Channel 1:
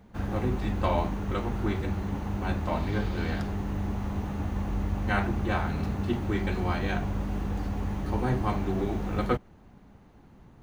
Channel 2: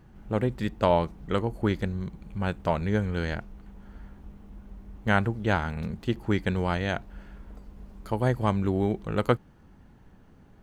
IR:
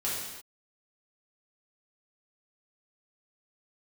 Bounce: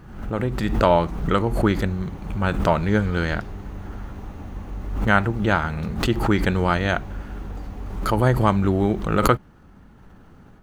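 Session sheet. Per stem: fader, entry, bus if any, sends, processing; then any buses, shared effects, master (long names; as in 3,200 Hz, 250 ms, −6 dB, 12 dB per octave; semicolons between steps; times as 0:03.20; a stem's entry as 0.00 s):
−12.5 dB, 0.00 s, no send, automatic gain control gain up to 8 dB
−2.0 dB, 0.00 s, polarity flipped, no send, automatic gain control gain up to 8 dB; parametric band 1,300 Hz +6.5 dB 0.4 octaves; background raised ahead of every attack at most 66 dB per second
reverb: not used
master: no processing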